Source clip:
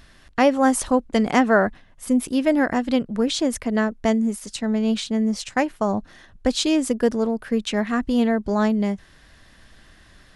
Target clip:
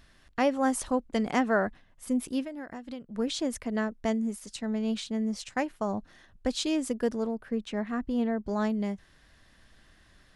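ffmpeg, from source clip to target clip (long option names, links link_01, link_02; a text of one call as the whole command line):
ffmpeg -i in.wav -filter_complex "[0:a]asplit=3[link_01][link_02][link_03];[link_01]afade=type=out:start_time=2.43:duration=0.02[link_04];[link_02]acompressor=threshold=-27dB:ratio=16,afade=type=in:start_time=2.43:duration=0.02,afade=type=out:start_time=3.16:duration=0.02[link_05];[link_03]afade=type=in:start_time=3.16:duration=0.02[link_06];[link_04][link_05][link_06]amix=inputs=3:normalize=0,asettb=1/sr,asplit=3[link_07][link_08][link_09];[link_07]atrim=end=7.354[link_10];[link_08]atrim=start=7.35:end=8.47,asetpts=PTS-STARTPTS,afade=type=in:duration=0.004:curve=qsin,afade=type=out:start_time=1.116:duration=0.004:curve=qsin,highshelf=frequency=2300:gain=-9[link_11];[link_09]atrim=start=8.466[link_12];[link_10][link_11]acrossfade=duration=0.004:curve1=hsin:curve2=qsin[link_13];[link_13][link_12]acrossfade=duration=0.004:curve1=qsin:curve2=hsin,volume=-8.5dB" out.wav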